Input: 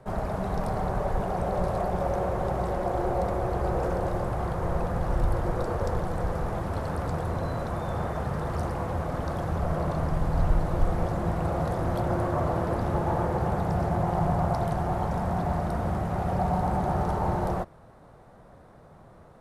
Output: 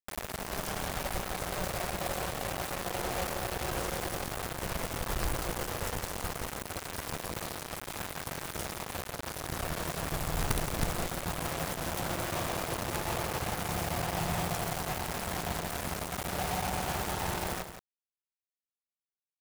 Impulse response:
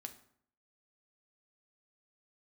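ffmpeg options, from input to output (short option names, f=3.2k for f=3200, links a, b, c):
-filter_complex "[0:a]crystalizer=i=5.5:c=0,acrusher=bits=3:mix=0:aa=0.000001,aeval=exprs='0.299*sin(PI/2*3.98*val(0)/0.299)':c=same,asplit=2[a][b];[b]aecho=0:1:170:0.335[c];[a][c]amix=inputs=2:normalize=0"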